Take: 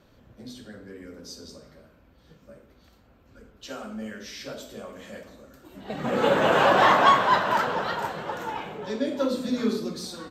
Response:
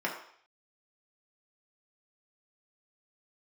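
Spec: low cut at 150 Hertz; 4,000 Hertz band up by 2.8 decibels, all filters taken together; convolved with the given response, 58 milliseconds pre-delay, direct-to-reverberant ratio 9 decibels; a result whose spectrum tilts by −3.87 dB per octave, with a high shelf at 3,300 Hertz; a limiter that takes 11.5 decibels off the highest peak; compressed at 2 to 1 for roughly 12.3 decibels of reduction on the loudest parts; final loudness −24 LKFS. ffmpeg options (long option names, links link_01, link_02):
-filter_complex "[0:a]highpass=150,highshelf=frequency=3300:gain=-5.5,equalizer=frequency=4000:width_type=o:gain=7.5,acompressor=threshold=-37dB:ratio=2,alimiter=level_in=5dB:limit=-24dB:level=0:latency=1,volume=-5dB,asplit=2[link_01][link_02];[1:a]atrim=start_sample=2205,adelay=58[link_03];[link_02][link_03]afir=irnorm=-1:irlink=0,volume=-17dB[link_04];[link_01][link_04]amix=inputs=2:normalize=0,volume=15dB"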